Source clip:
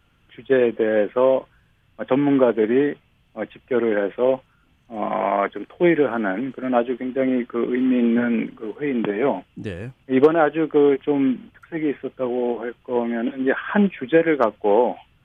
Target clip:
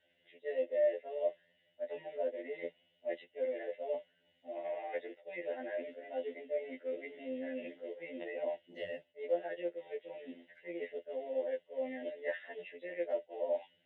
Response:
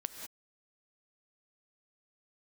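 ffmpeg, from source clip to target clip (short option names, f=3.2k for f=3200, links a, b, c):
-filter_complex "[0:a]areverse,acompressor=threshold=-28dB:ratio=8,areverse,asplit=3[a][b][c];[a]bandpass=f=530:t=q:w=8,volume=0dB[d];[b]bandpass=f=1.84k:t=q:w=8,volume=-6dB[e];[c]bandpass=f=2.48k:t=q:w=8,volume=-9dB[f];[d][e][f]amix=inputs=3:normalize=0,asetrate=48510,aresample=44100,afftfilt=real='re*2*eq(mod(b,4),0)':imag='im*2*eq(mod(b,4),0)':win_size=2048:overlap=0.75,volume=5.5dB"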